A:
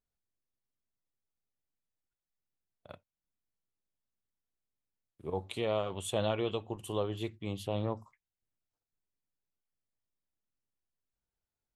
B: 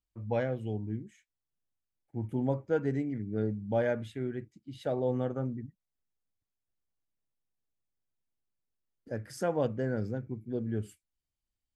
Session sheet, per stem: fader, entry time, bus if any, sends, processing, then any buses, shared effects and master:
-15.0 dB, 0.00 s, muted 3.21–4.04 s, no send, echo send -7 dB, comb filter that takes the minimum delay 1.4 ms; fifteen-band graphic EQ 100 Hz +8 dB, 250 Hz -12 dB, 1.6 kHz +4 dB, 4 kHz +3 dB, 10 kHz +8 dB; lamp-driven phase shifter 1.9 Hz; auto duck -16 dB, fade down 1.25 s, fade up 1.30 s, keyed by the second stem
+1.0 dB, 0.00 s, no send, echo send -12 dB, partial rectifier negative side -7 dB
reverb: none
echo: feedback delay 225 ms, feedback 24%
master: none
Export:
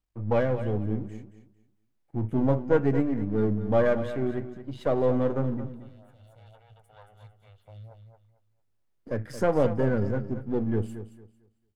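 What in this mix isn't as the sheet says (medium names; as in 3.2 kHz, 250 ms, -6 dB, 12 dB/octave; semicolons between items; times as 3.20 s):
stem B +1.0 dB -> +10.0 dB; master: extra treble shelf 2.9 kHz -9 dB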